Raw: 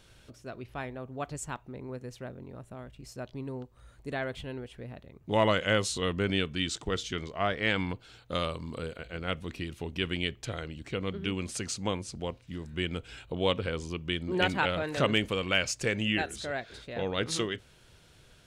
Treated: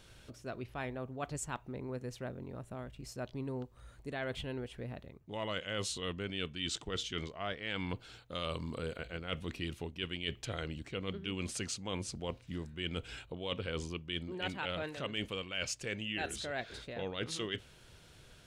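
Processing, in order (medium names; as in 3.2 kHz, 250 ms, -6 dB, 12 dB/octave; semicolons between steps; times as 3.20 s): dynamic bell 3 kHz, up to +5 dB, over -47 dBFS, Q 2.2; reverse; compression 12:1, threshold -34 dBFS, peak gain reduction 16.5 dB; reverse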